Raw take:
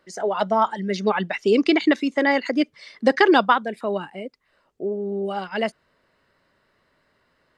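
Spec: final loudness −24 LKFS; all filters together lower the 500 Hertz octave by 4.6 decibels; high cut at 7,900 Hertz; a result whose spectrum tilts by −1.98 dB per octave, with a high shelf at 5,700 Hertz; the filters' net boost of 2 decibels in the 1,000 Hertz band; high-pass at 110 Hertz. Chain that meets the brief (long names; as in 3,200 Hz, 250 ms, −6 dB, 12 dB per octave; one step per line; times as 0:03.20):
high-pass filter 110 Hz
low-pass filter 7,900 Hz
parametric band 500 Hz −7.5 dB
parametric band 1,000 Hz +4.5 dB
high-shelf EQ 5,700 Hz +7 dB
level −1.5 dB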